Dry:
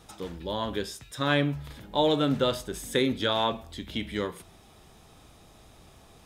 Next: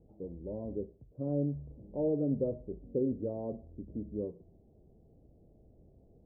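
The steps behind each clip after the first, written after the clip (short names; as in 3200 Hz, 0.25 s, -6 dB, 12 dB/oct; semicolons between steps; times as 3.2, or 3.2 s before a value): steep low-pass 580 Hz 36 dB/oct; gain -5 dB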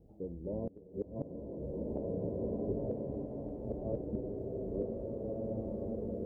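reverse delay 0.451 s, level -1 dB; flipped gate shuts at -27 dBFS, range -25 dB; bloom reverb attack 1.98 s, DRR -5 dB; gain +1 dB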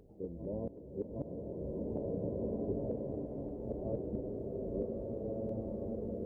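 reverse echo 0.766 s -9.5 dB; gain -1 dB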